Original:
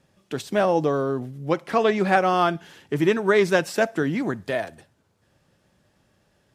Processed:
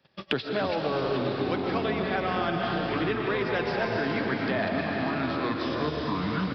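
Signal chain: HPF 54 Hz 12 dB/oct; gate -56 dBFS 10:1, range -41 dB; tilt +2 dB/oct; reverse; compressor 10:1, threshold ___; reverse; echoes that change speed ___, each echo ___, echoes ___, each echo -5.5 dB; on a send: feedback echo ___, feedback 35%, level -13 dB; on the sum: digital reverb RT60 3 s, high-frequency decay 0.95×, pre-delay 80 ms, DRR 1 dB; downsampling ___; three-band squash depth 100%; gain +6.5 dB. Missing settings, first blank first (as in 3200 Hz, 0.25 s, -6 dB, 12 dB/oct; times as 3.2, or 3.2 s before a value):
-34 dBFS, 0.124 s, -7 st, 2, 0.252 s, 11025 Hz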